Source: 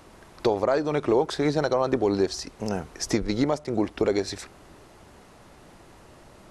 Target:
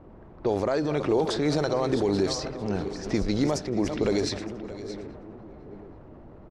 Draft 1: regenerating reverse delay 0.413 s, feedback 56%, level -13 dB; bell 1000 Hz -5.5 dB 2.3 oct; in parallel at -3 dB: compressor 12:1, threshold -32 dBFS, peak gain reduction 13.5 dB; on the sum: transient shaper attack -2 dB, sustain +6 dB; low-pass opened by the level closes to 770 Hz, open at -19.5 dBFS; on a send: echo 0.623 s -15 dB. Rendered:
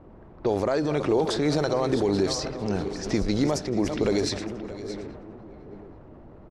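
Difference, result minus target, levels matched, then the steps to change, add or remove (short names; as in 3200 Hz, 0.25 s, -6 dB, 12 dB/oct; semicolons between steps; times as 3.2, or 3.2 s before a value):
compressor: peak gain reduction -8.5 dB
change: compressor 12:1, threshold -41.5 dBFS, peak gain reduction 22 dB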